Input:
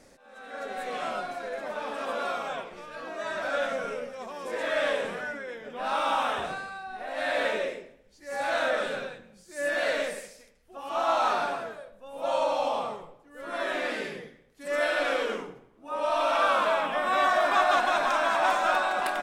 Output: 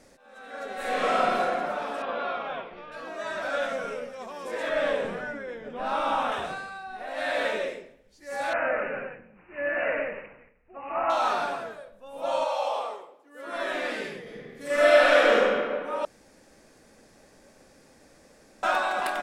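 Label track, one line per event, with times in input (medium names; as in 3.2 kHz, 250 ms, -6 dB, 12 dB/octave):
0.750000	1.400000	reverb throw, RT60 2.4 s, DRR -8.5 dB
2.020000	2.920000	low-pass 3.7 kHz 24 dB/octave
4.690000	6.320000	tilt EQ -2 dB/octave
8.530000	11.100000	careless resampling rate divided by 8×, down none, up filtered
12.440000	13.540000	high-pass 550 Hz -> 200 Hz 24 dB/octave
14.220000	15.410000	reverb throw, RT60 2 s, DRR -7.5 dB
16.050000	18.630000	room tone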